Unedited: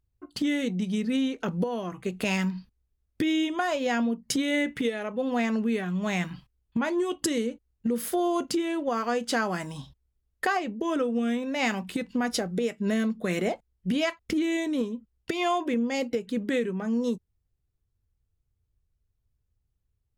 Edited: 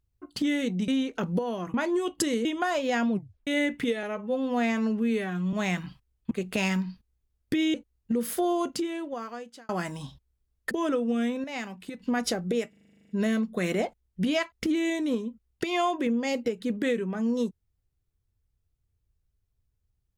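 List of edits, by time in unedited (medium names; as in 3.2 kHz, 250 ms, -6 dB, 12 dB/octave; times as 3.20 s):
0.88–1.13 s: delete
1.99–3.42 s: swap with 6.78–7.49 s
4.08 s: tape stop 0.36 s
5.00–6.00 s: stretch 1.5×
8.22–9.44 s: fade out
10.46–10.78 s: delete
11.51–12.07 s: gain -8.5 dB
12.76 s: stutter 0.04 s, 11 plays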